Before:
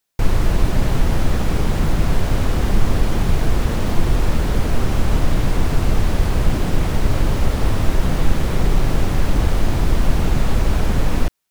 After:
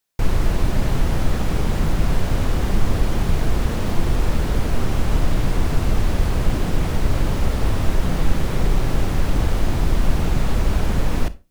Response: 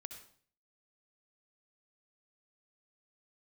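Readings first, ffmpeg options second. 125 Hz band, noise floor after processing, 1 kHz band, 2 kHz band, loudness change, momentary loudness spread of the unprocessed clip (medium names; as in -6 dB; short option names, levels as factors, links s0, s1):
-2.0 dB, -23 dBFS, -2.0 dB, -2.0 dB, -2.0 dB, 1 LU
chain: -filter_complex "[0:a]asplit=2[s0][s1];[1:a]atrim=start_sample=2205,asetrate=88200,aresample=44100[s2];[s1][s2]afir=irnorm=-1:irlink=0,volume=1.78[s3];[s0][s3]amix=inputs=2:normalize=0,volume=0.531"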